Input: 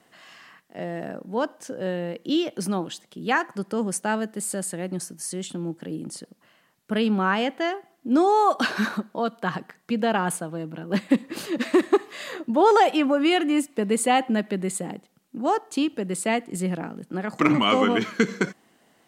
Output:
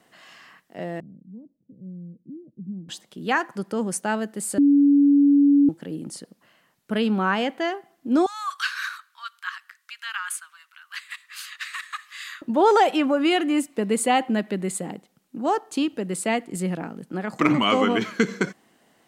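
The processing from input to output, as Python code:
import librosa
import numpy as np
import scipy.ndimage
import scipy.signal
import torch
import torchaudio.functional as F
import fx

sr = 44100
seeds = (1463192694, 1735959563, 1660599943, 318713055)

y = fx.ladder_lowpass(x, sr, hz=230.0, resonance_pct=30, at=(1.0, 2.89))
y = fx.steep_highpass(y, sr, hz=1200.0, slope=48, at=(8.26, 12.42))
y = fx.edit(y, sr, fx.bleep(start_s=4.58, length_s=1.11, hz=284.0, db=-12.5), tone=tone)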